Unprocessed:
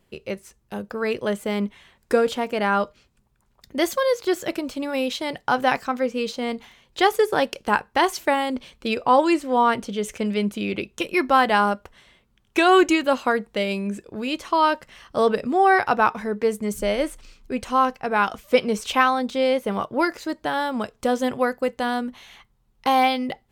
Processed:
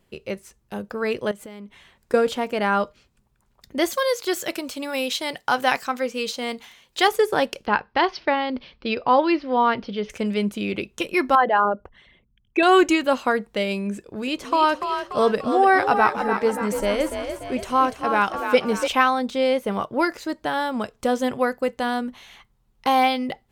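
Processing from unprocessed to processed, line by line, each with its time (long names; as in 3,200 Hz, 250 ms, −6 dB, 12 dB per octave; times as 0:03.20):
0:01.31–0:02.14: downward compressor, threshold −36 dBFS
0:03.93–0:07.08: spectral tilt +2 dB per octave
0:07.66–0:10.10: elliptic low-pass filter 5,100 Hz
0:11.35–0:12.63: spectral envelope exaggerated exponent 2
0:13.93–0:18.88: echo with shifted repeats 291 ms, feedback 51%, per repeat +42 Hz, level −7.5 dB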